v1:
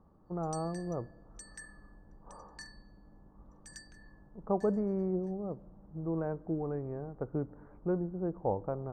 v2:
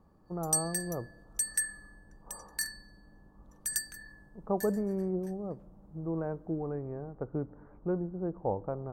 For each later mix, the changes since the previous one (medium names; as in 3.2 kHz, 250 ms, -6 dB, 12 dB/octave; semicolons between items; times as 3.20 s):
background +11.5 dB; master: remove low-pass 6.7 kHz 24 dB/octave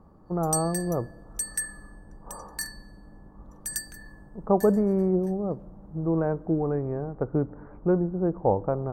speech +9.0 dB; background: send +6.5 dB